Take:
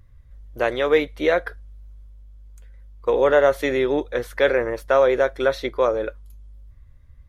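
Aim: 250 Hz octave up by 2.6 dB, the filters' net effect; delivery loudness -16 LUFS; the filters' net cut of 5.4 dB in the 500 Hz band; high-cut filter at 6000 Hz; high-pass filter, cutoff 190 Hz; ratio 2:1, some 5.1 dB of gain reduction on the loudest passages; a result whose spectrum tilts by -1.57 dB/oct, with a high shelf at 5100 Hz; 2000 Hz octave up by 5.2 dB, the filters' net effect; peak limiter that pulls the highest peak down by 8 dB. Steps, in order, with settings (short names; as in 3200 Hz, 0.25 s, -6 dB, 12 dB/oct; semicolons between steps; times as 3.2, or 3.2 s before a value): HPF 190 Hz; LPF 6000 Hz; bell 250 Hz +8 dB; bell 500 Hz -8.5 dB; bell 2000 Hz +6.5 dB; high shelf 5100 Hz +5 dB; compressor 2:1, threshold -23 dBFS; gain +12.5 dB; limiter -3 dBFS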